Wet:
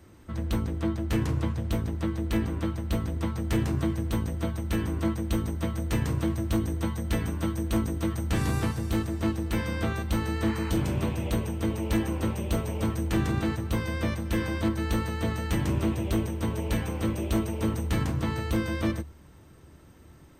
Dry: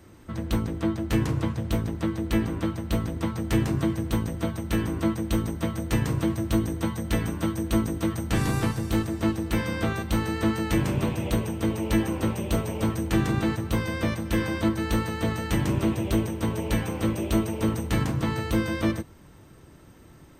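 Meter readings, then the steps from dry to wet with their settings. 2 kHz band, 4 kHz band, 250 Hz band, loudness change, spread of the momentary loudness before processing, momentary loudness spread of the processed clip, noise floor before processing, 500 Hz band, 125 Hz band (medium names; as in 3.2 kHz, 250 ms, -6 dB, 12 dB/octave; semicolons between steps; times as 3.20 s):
-3.0 dB, -3.0 dB, -3.0 dB, -2.0 dB, 4 LU, 3 LU, -50 dBFS, -3.0 dB, -1.0 dB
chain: one-sided wavefolder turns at -16 dBFS; spectral replace 10.48–10.87 s, 830–2800 Hz both; peaking EQ 74 Hz +10.5 dB 0.2 oct; trim -3 dB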